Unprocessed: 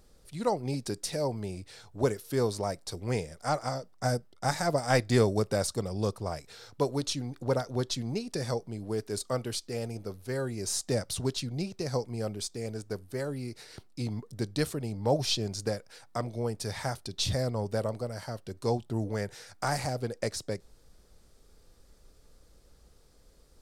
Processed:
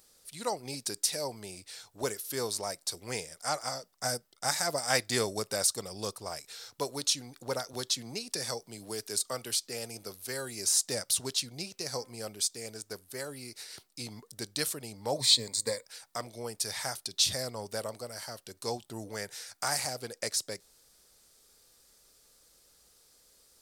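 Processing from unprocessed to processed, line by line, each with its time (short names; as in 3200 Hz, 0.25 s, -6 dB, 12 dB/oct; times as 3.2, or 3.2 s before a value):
7.73–10.77 three-band squash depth 40%
11.7–12.26 de-hum 258.1 Hz, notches 13
15.17–15.86 ripple EQ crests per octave 1, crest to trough 14 dB
whole clip: tilt +3.5 dB/oct; gain -2.5 dB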